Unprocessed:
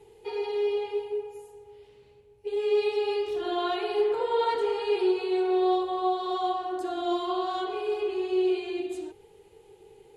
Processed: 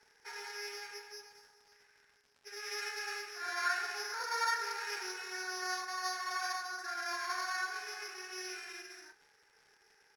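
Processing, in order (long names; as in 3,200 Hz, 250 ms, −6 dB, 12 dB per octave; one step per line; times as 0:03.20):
samples sorted by size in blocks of 8 samples
high-pass with resonance 1,600 Hz, resonance Q 6.1
parametric band 3,100 Hz −14 dB 0.53 octaves
surface crackle 120 per second −49 dBFS
high-frequency loss of the air 58 metres
double-tracking delay 32 ms −11 dB
level −1.5 dB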